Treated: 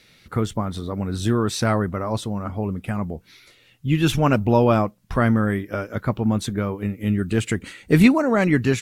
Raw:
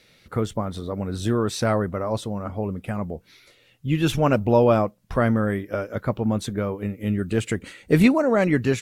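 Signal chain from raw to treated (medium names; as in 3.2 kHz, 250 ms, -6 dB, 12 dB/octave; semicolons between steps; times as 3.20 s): peaking EQ 540 Hz -5.5 dB 0.78 oct; trim +3 dB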